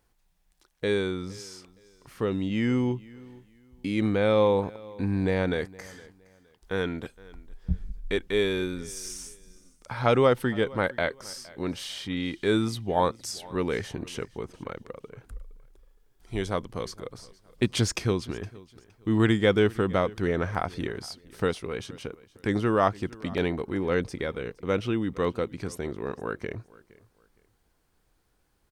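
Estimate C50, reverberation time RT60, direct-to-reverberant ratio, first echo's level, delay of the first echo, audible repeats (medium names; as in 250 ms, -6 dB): no reverb, no reverb, no reverb, -22.0 dB, 465 ms, 2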